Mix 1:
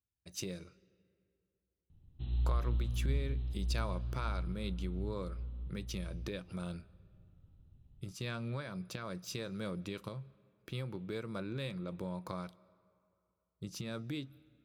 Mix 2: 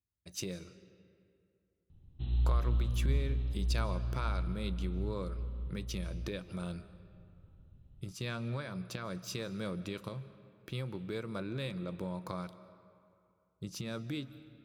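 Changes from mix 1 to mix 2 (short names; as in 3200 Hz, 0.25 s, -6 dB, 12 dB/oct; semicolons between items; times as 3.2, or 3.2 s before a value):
speech: send +10.5 dB; background +3.0 dB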